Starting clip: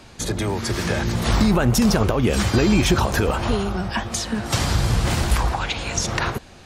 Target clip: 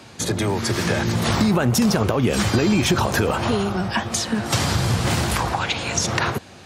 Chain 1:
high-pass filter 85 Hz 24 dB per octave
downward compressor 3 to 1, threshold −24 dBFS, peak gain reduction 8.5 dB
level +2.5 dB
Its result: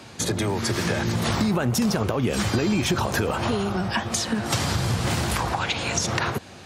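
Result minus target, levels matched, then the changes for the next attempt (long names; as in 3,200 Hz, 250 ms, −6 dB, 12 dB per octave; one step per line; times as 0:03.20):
downward compressor: peak gain reduction +4.5 dB
change: downward compressor 3 to 1, threshold −17.5 dBFS, peak gain reduction 4 dB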